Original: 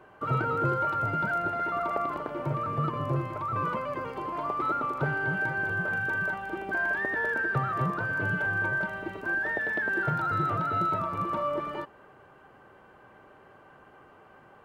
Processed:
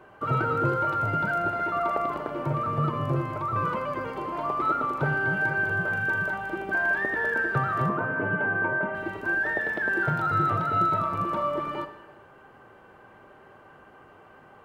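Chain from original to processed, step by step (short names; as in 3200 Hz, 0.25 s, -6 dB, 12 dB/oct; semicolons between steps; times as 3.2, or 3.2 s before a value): 7.89–8.95 speaker cabinet 150–2500 Hz, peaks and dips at 250 Hz +9 dB, 420 Hz +4 dB, 640 Hz +3 dB, 1000 Hz +4 dB, 1600 Hz -3 dB; non-linear reverb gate 0.43 s falling, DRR 9 dB; gain +2 dB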